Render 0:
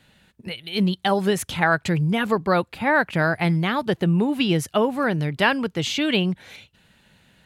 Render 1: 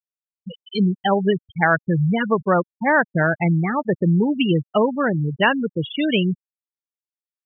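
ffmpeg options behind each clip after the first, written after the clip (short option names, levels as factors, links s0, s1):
-af "afftfilt=real='re*gte(hypot(re,im),0.178)':imag='im*gte(hypot(re,im),0.178)':win_size=1024:overlap=0.75,volume=1.33"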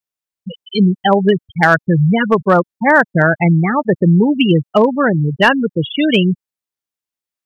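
-af "asoftclip=type=hard:threshold=0.376,volume=2.11"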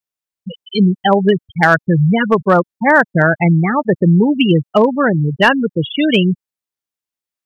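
-af anull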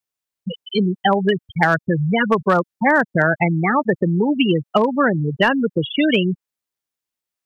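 -filter_complex "[0:a]acrossover=split=330|1100|2500[s0][s1][s2][s3];[s0]acompressor=threshold=0.0631:ratio=4[s4];[s1]acompressor=threshold=0.0891:ratio=4[s5];[s2]acompressor=threshold=0.0794:ratio=4[s6];[s3]acompressor=threshold=0.0178:ratio=4[s7];[s4][s5][s6][s7]amix=inputs=4:normalize=0,volume=1.26"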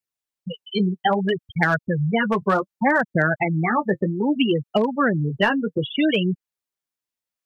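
-af "flanger=delay=0.4:depth=9.9:regen=-25:speed=0.63:shape=sinusoidal"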